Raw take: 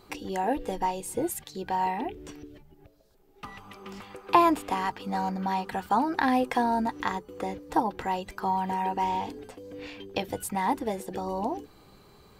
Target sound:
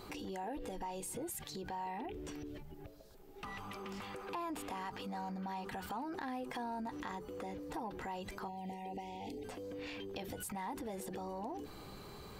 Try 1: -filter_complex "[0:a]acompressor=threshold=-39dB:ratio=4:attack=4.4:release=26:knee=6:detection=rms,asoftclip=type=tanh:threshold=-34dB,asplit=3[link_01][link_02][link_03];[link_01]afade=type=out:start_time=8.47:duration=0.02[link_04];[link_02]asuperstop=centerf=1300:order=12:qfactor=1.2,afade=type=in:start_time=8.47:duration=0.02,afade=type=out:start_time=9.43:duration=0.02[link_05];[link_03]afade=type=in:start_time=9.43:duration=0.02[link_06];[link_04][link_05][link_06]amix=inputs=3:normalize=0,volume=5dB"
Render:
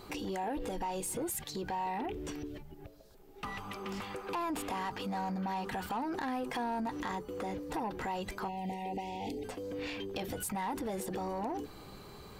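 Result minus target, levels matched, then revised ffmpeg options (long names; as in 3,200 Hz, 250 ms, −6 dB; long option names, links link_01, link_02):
downward compressor: peak gain reduction −7.5 dB
-filter_complex "[0:a]acompressor=threshold=-49dB:ratio=4:attack=4.4:release=26:knee=6:detection=rms,asoftclip=type=tanh:threshold=-34dB,asplit=3[link_01][link_02][link_03];[link_01]afade=type=out:start_time=8.47:duration=0.02[link_04];[link_02]asuperstop=centerf=1300:order=12:qfactor=1.2,afade=type=in:start_time=8.47:duration=0.02,afade=type=out:start_time=9.43:duration=0.02[link_05];[link_03]afade=type=in:start_time=9.43:duration=0.02[link_06];[link_04][link_05][link_06]amix=inputs=3:normalize=0,volume=5dB"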